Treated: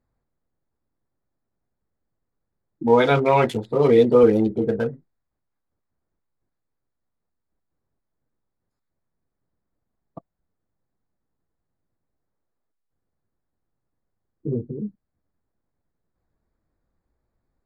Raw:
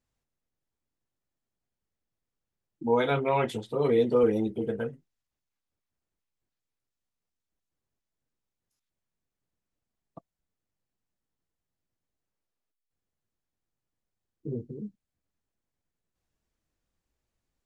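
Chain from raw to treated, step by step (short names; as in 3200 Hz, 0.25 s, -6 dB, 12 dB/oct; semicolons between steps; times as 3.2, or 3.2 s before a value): Wiener smoothing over 15 samples; gain +8.5 dB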